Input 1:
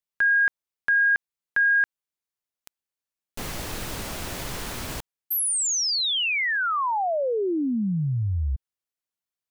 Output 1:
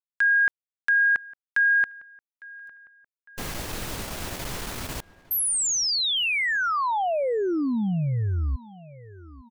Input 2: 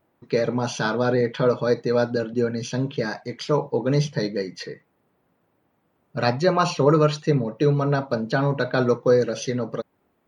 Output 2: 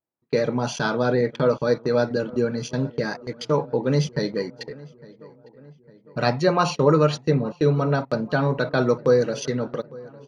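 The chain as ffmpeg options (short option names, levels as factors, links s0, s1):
-filter_complex "[0:a]agate=range=0.0562:threshold=0.02:ratio=16:release=37:detection=rms,asplit=2[s0][s1];[s1]adelay=855,lowpass=f=2300:p=1,volume=0.0891,asplit=2[s2][s3];[s3]adelay=855,lowpass=f=2300:p=1,volume=0.55,asplit=2[s4][s5];[s5]adelay=855,lowpass=f=2300:p=1,volume=0.55,asplit=2[s6][s7];[s7]adelay=855,lowpass=f=2300:p=1,volume=0.55[s8];[s0][s2][s4][s6][s8]amix=inputs=5:normalize=0"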